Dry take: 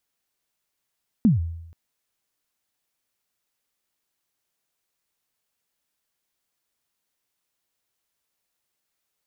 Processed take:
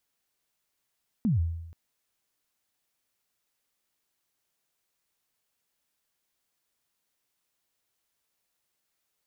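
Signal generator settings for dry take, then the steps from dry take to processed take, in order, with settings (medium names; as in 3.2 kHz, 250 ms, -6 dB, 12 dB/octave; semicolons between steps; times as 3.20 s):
kick drum length 0.48 s, from 250 Hz, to 83 Hz, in 145 ms, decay 0.84 s, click off, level -11 dB
peak limiter -21.5 dBFS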